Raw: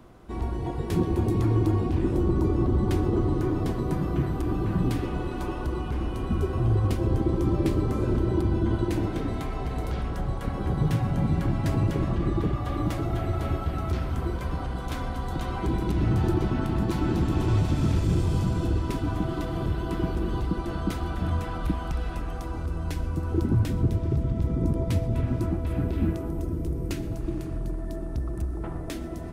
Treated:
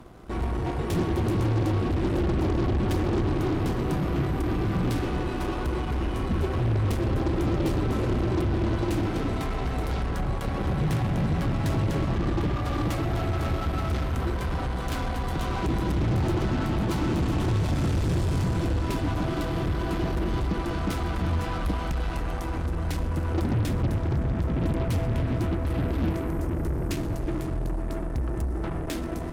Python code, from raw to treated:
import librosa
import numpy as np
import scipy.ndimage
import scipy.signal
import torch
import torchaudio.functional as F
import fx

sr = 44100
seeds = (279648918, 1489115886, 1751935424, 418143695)

y = 10.0 ** (-24.0 / 20.0) * np.tanh(x / 10.0 ** (-24.0 / 20.0))
y = fx.cheby_harmonics(y, sr, harmonics=(8,), levels_db=(-18,), full_scale_db=-24.0)
y = y * librosa.db_to_amplitude(3.5)